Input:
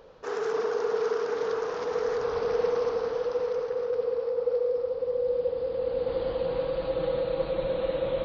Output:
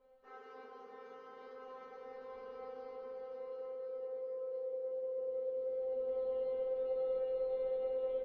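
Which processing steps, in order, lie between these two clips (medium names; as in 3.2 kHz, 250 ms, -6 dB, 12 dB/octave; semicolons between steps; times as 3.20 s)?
low-pass 2.8 kHz 12 dB/octave; reverse; upward compressor, threshold -40 dBFS; reverse; feedback comb 260 Hz, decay 0.39 s, harmonics all, mix 100%; frequency-shifting echo 262 ms, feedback 57%, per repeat -44 Hz, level -19.5 dB; reverberation RT60 0.45 s, pre-delay 5 ms, DRR 3.5 dB; trim -5 dB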